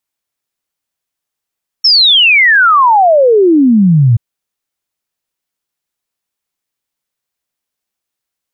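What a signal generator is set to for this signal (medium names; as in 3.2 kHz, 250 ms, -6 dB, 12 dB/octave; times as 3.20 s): log sweep 5.5 kHz -> 110 Hz 2.33 s -4 dBFS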